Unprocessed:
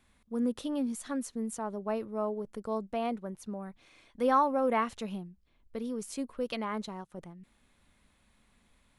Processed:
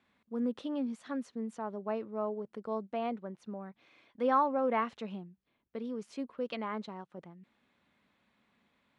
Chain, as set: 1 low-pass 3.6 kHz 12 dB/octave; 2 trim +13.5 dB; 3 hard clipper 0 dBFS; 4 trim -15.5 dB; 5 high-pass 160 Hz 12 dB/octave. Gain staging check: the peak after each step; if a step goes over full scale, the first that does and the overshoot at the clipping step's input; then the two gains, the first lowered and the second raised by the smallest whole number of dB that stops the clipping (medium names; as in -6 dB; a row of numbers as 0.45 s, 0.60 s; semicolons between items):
-15.0 dBFS, -1.5 dBFS, -1.5 dBFS, -17.0 dBFS, -16.5 dBFS; nothing clips